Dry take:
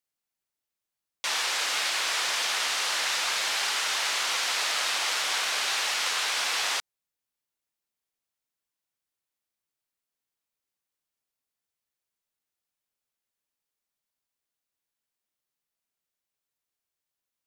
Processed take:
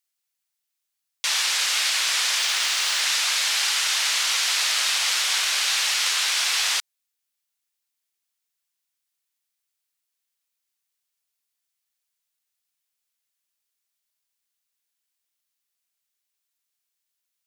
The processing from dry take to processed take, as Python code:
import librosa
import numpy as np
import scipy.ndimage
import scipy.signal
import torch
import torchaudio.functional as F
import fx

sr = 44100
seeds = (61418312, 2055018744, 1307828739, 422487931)

y = fx.median_filter(x, sr, points=3, at=(2.38, 3.01))
y = fx.tilt_shelf(y, sr, db=-7.5, hz=1200.0)